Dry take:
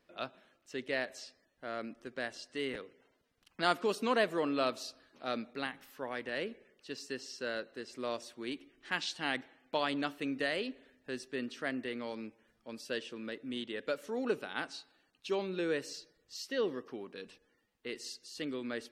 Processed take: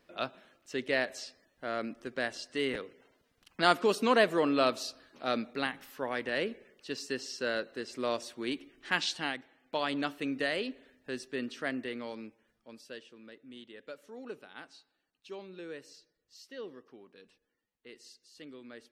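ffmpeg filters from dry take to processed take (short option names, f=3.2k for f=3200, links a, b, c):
-af "volume=12dB,afade=t=out:st=9.15:d=0.21:silence=0.316228,afade=t=in:st=9.36:d=0.65:silence=0.446684,afade=t=out:st=11.67:d=1.38:silence=0.251189"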